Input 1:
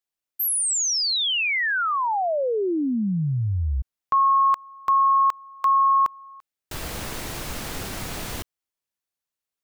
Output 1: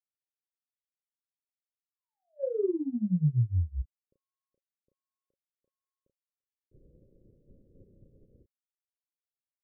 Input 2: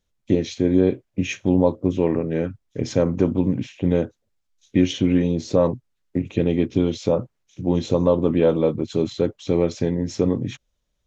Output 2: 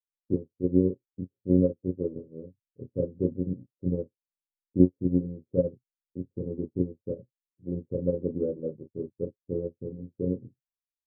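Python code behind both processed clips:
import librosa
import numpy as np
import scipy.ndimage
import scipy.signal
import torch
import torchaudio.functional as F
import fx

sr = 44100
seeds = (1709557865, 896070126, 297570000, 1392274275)

y = scipy.signal.sosfilt(scipy.signal.cheby1(6, 3, 560.0, 'lowpass', fs=sr, output='sos'), x)
y = fx.doubler(y, sr, ms=33.0, db=-4.0)
y = fx.upward_expand(y, sr, threshold_db=-37.0, expansion=2.5)
y = y * librosa.db_to_amplitude(-1.5)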